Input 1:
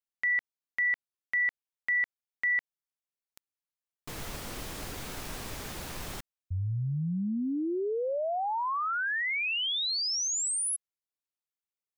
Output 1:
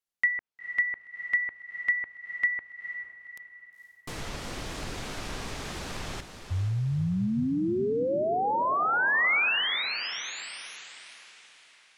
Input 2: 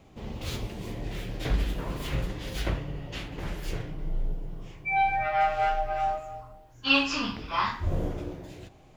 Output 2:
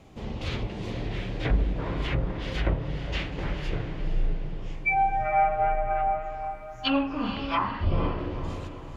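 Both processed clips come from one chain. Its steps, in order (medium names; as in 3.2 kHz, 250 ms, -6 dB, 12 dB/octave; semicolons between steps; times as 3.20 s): low-pass that closes with the level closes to 840 Hz, closed at -24 dBFS; dynamic bell 2.2 kHz, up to +5 dB, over -45 dBFS, Q 1.2; echo that smears into a reverb 480 ms, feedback 43%, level -9 dB; trim +3 dB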